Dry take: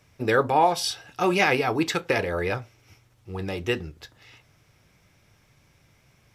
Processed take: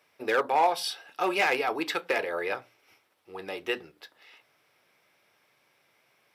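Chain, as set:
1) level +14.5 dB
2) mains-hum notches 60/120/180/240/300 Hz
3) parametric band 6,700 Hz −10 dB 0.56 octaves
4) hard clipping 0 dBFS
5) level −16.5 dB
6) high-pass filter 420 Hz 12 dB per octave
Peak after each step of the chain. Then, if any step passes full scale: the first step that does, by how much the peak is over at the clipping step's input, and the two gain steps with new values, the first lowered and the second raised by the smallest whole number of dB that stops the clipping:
+8.5, +9.0, +8.5, 0.0, −16.5, −12.0 dBFS
step 1, 8.5 dB
step 1 +5.5 dB, step 5 −7.5 dB

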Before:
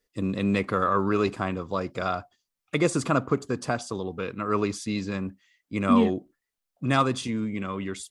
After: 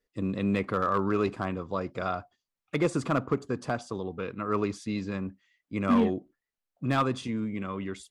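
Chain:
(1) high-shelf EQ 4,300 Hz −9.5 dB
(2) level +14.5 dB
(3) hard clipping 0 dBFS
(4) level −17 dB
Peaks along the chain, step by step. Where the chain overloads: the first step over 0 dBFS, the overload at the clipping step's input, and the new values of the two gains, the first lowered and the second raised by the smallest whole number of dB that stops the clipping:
−9.0, +5.5, 0.0, −17.0 dBFS
step 2, 5.5 dB
step 2 +8.5 dB, step 4 −11 dB

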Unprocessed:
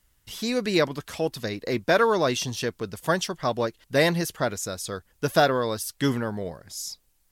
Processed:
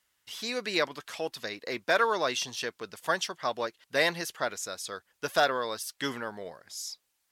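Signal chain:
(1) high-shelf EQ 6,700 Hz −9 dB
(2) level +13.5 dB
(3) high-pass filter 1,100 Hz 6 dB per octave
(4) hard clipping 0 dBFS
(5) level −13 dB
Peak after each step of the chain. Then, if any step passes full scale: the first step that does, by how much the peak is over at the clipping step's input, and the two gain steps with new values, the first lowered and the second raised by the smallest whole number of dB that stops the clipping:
−7.0, +6.5, +5.5, 0.0, −13.0 dBFS
step 2, 5.5 dB
step 2 +7.5 dB, step 5 −7 dB

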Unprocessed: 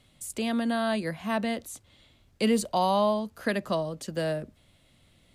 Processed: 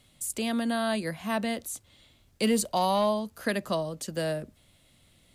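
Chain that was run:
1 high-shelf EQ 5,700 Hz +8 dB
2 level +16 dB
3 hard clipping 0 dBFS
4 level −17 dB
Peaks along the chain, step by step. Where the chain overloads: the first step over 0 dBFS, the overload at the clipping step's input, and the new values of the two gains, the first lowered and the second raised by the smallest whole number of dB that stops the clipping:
−13.0, +3.0, 0.0, −17.0 dBFS
step 2, 3.0 dB
step 2 +13 dB, step 4 −14 dB

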